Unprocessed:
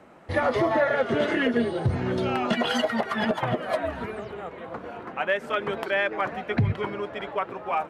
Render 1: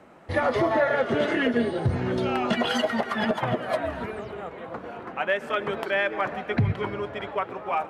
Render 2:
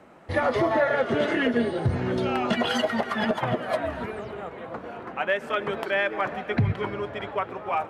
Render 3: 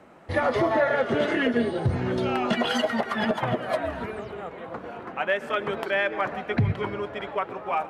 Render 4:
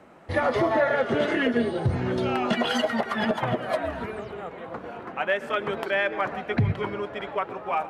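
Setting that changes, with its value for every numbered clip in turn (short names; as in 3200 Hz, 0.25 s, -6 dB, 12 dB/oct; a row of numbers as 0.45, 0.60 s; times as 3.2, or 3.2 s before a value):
plate-style reverb, RT60: 2.3, 4.8, 1.1, 0.52 s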